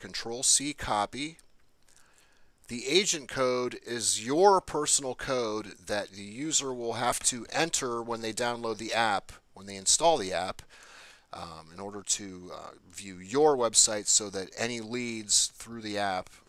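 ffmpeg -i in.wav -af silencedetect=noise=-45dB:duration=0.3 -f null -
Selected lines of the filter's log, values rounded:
silence_start: 1.40
silence_end: 1.89 | silence_duration: 0.49
silence_start: 2.20
silence_end: 2.64 | silence_duration: 0.44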